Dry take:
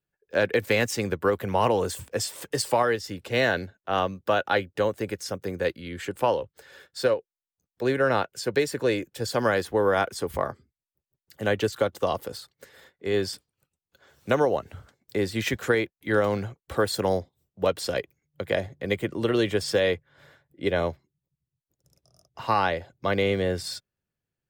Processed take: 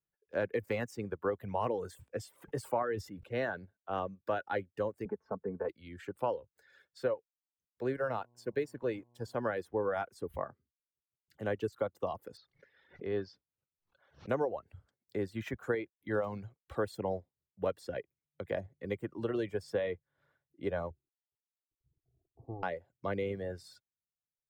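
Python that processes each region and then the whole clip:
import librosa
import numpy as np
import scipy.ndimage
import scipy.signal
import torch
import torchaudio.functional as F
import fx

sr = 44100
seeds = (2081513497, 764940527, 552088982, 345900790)

y = fx.chain(x, sr, fx.peak_eq(hz=3700.0, db=-4.5, octaves=1.7),
    fx.sustainer(db_per_s=60.0), at=(2.36, 3.35))
y = fx.chain(y, sr, fx.lowpass_res(hz=1000.0, q=2.5),
    fx.comb(ms=4.6, depth=0.6),
    fx.band_squash(depth_pct=70), at=(5.05, 5.69))
y = fx.law_mismatch(y, sr, coded='A', at=(7.93, 9.42), fade=0.02)
y = fx.dmg_buzz(y, sr, base_hz=120.0, harmonics=9, level_db=-49.0, tilt_db=-5, odd_only=False, at=(7.93, 9.42), fade=0.02)
y = fx.chain(y, sr, fx.steep_lowpass(hz=5800.0, slope=48),
    fx.pre_swell(db_per_s=140.0), at=(12.37, 14.29))
y = fx.chain(y, sr, fx.cvsd(bps=64000),
    fx.gaussian_blur(sigma=19.0),
    fx.comb(ms=2.6, depth=0.84), at=(20.9, 22.63))
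y = fx.high_shelf(y, sr, hz=3300.0, db=-11.5)
y = fx.dereverb_blind(y, sr, rt60_s=1.3)
y = fx.dynamic_eq(y, sr, hz=4200.0, q=0.71, threshold_db=-47.0, ratio=4.0, max_db=-6)
y = y * librosa.db_to_amplitude(-8.5)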